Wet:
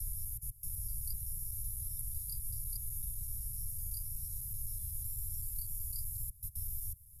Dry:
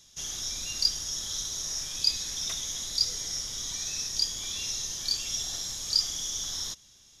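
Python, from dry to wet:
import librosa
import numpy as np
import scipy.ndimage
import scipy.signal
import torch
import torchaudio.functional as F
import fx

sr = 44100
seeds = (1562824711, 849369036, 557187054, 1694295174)

y = fx.block_reorder(x, sr, ms=126.0, group=5)
y = scipy.signal.sosfilt(scipy.signal.cheby2(4, 40, [230.0, 6600.0], 'bandstop', fs=sr, output='sos'), y)
y = fx.high_shelf(y, sr, hz=6300.0, db=7.0)
y = fx.band_squash(y, sr, depth_pct=70)
y = y * 10.0 ** (7.0 / 20.0)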